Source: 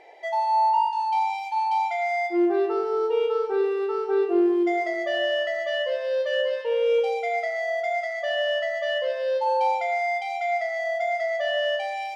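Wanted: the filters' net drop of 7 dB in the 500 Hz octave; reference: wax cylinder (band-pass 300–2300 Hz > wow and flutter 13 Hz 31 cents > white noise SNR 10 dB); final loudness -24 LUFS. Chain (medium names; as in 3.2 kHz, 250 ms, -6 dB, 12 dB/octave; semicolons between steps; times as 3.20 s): band-pass 300–2300 Hz; peaking EQ 500 Hz -8.5 dB; wow and flutter 13 Hz 31 cents; white noise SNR 10 dB; trim +4.5 dB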